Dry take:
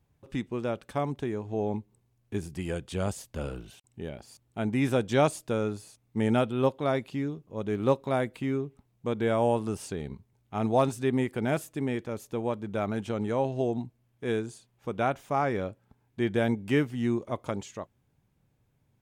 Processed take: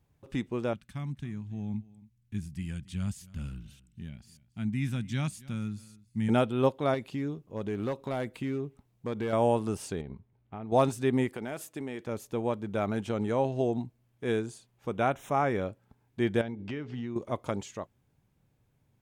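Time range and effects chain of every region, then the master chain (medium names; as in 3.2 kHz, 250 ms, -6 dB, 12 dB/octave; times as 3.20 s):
0.73–6.29 s: FFT filter 210 Hz 0 dB, 460 Hz -26 dB, 2 kHz -6 dB + delay 276 ms -21 dB
6.94–9.33 s: compression 2.5:1, threshold -29 dBFS + hard clipper -26.5 dBFS
10.01–10.72 s: compression 10:1, threshold -35 dBFS + distance through air 320 m
11.33–12.06 s: high-pass 270 Hz 6 dB/octave + compression, threshold -32 dBFS
14.92–15.67 s: upward compressor, threshold -38 dBFS + Butterworth band-stop 4.6 kHz, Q 3.4
16.41–17.16 s: low-pass 5.2 kHz 24 dB/octave + de-hum 83.86 Hz, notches 6 + compression 12:1, threshold -32 dBFS
whole clip: none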